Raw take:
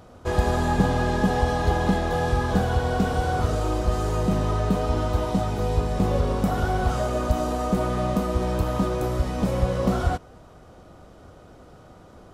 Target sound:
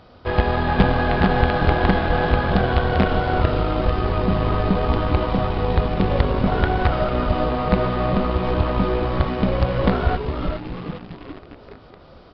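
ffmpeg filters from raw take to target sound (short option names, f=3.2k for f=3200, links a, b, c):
-filter_complex "[0:a]asplit=7[a][b][c][d][e][f][g];[b]adelay=409,afreqshift=-120,volume=-4.5dB[h];[c]adelay=818,afreqshift=-240,volume=-10.9dB[i];[d]adelay=1227,afreqshift=-360,volume=-17.3dB[j];[e]adelay=1636,afreqshift=-480,volume=-23.6dB[k];[f]adelay=2045,afreqshift=-600,volume=-30dB[l];[g]adelay=2454,afreqshift=-720,volume=-36.4dB[m];[a][h][i][j][k][l][m]amix=inputs=7:normalize=0,asplit=2[n][o];[o]acrusher=bits=3:dc=4:mix=0:aa=0.000001,volume=-4dB[p];[n][p]amix=inputs=2:normalize=0,crystalizer=i=4.5:c=0,acrossover=split=3200[q][r];[r]acompressor=threshold=-53dB:ratio=4:attack=1:release=60[s];[q][s]amix=inputs=2:normalize=0,aresample=11025,aresample=44100,volume=-1dB"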